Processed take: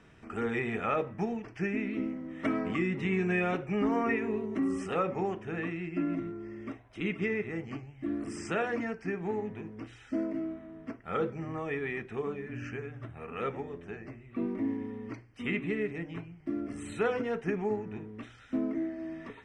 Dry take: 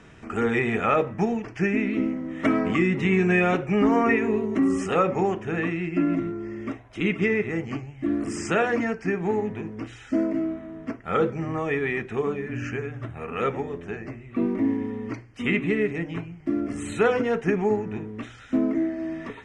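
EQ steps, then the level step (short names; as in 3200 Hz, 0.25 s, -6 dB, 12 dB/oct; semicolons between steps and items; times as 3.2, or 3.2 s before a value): notch 6800 Hz, Q 7.9; -8.5 dB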